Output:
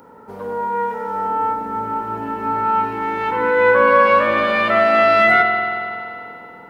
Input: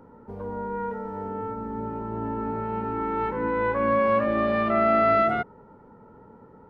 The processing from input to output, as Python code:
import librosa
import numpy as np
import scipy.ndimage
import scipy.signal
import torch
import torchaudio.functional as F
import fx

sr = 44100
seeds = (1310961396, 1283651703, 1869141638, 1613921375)

y = fx.tilt_eq(x, sr, slope=3.5)
y = fx.rev_spring(y, sr, rt60_s=2.6, pass_ms=(46,), chirp_ms=50, drr_db=1.5)
y = y * 10.0 ** (8.5 / 20.0)